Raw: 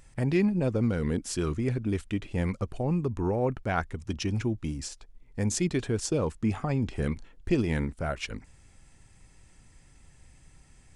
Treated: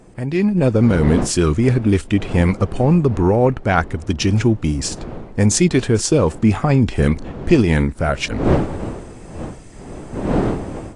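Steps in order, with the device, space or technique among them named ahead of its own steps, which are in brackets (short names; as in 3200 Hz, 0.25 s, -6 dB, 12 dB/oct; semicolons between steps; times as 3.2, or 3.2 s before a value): smartphone video outdoors (wind noise 390 Hz -40 dBFS; AGC gain up to 12 dB; gain +2 dB; AAC 48 kbps 22050 Hz)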